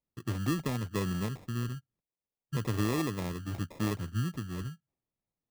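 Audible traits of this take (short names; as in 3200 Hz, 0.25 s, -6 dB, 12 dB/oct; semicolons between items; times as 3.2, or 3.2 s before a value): phasing stages 6, 0.39 Hz, lowest notch 600–2100 Hz; aliases and images of a low sample rate 1500 Hz, jitter 0%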